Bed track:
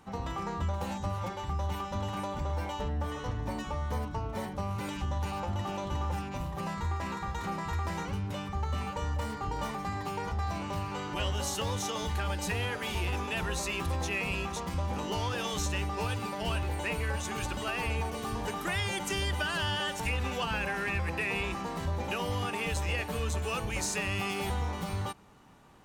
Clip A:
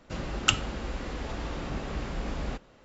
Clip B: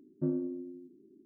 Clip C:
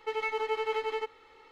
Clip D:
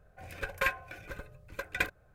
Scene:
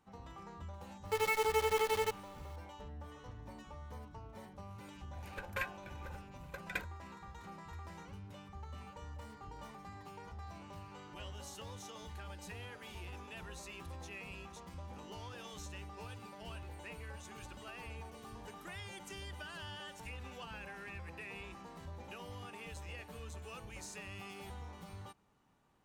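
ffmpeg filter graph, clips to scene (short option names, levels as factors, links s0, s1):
-filter_complex "[0:a]volume=0.168[s0];[3:a]acrusher=bits=7:dc=4:mix=0:aa=0.000001,atrim=end=1.51,asetpts=PTS-STARTPTS,volume=0.891,afade=t=in:d=0.004:c=hsin,afade=t=out:st=1.506:d=0.004:c=hsin,adelay=1050[s1];[4:a]atrim=end=2.14,asetpts=PTS-STARTPTS,volume=0.355,afade=t=in:d=0.004:c=hsin,afade=t=out:st=2.136:d=0.004:c=hsin,adelay=4950[s2];[s0][s1][s2]amix=inputs=3:normalize=0"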